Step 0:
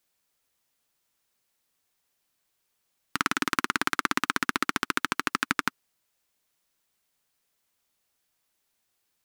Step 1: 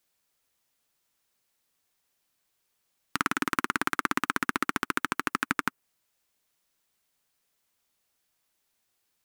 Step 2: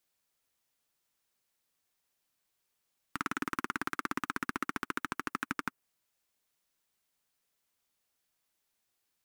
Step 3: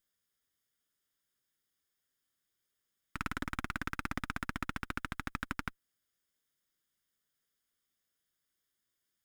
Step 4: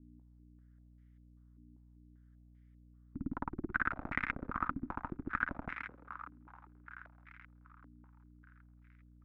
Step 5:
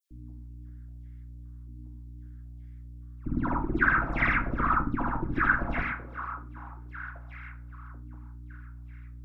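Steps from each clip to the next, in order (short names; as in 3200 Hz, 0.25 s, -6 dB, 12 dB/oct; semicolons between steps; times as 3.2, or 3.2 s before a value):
dynamic EQ 4400 Hz, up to -7 dB, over -46 dBFS, Q 0.87
soft clip -14.5 dBFS, distortion -12 dB; gain -4.5 dB
minimum comb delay 0.59 ms; gain -2 dB
hum 60 Hz, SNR 12 dB; thinning echo 0.215 s, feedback 81%, high-pass 360 Hz, level -8 dB; stepped low-pass 5.1 Hz 280–2100 Hz; gain -3 dB
dispersion lows, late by 0.109 s, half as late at 2000 Hz; reverb RT60 0.35 s, pre-delay 3 ms, DRR 3 dB; gain +9 dB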